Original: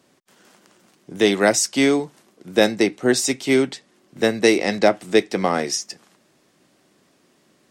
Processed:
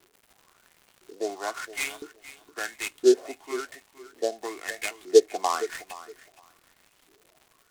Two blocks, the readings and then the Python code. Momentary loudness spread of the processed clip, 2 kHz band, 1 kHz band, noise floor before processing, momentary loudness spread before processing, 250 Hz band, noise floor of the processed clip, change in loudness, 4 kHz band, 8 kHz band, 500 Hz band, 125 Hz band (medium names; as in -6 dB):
22 LU, -10.5 dB, -6.5 dB, -61 dBFS, 8 LU, -12.5 dB, -64 dBFS, -8.0 dB, -12.0 dB, -11.5 dB, -6.0 dB, under -30 dB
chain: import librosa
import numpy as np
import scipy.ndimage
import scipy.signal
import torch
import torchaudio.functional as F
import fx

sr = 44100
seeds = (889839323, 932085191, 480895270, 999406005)

y = fx.tracing_dist(x, sr, depth_ms=0.27)
y = scipy.signal.sosfilt(scipy.signal.butter(4, 190.0, 'highpass', fs=sr, output='sos'), y)
y = y + 0.5 * np.pad(y, (int(2.8 * sr / 1000.0), 0))[:len(y)]
y = fx.rider(y, sr, range_db=10, speed_s=0.5)
y = fx.filter_lfo_bandpass(y, sr, shape='saw_up', hz=0.99, low_hz=340.0, high_hz=3800.0, q=7.4)
y = fx.dmg_crackle(y, sr, seeds[0], per_s=390.0, level_db=-47.0)
y = fx.echo_feedback(y, sr, ms=466, feedback_pct=17, wet_db=-16.0)
y = fx.noise_mod_delay(y, sr, seeds[1], noise_hz=5000.0, depth_ms=0.045)
y = y * 10.0 ** (2.5 / 20.0)